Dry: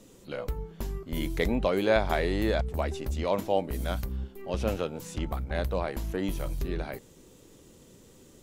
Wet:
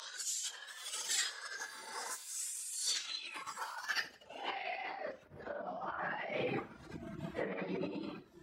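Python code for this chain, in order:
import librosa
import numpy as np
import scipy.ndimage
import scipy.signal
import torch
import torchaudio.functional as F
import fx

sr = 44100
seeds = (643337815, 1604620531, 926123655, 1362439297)

y = fx.paulstretch(x, sr, seeds[0], factor=4.6, window_s=0.05, from_s=4.52)
y = librosa.effects.preemphasis(y, coef=0.9, zi=[0.0])
y = fx.dereverb_blind(y, sr, rt60_s=0.95)
y = fx.high_shelf(y, sr, hz=9900.0, db=-3.0)
y = fx.over_compress(y, sr, threshold_db=-58.0, ratio=-1.0)
y = fx.filter_sweep_highpass(y, sr, from_hz=1200.0, to_hz=170.0, start_s=3.18, end_s=6.21, q=1.9)
y = fx.spec_repair(y, sr, seeds[1], start_s=1.33, length_s=0.96, low_hz=1600.0, high_hz=4000.0, source='after')
y = fx.filter_sweep_lowpass(y, sr, from_hz=5900.0, to_hz=1300.0, start_s=3.74, end_s=5.18, q=1.8)
y = fx.formant_shift(y, sr, semitones=4)
y = fx.echo_feedback(y, sr, ms=84, feedback_pct=40, wet_db=-20.0)
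y = y * 10.0 ** (16.5 / 20.0)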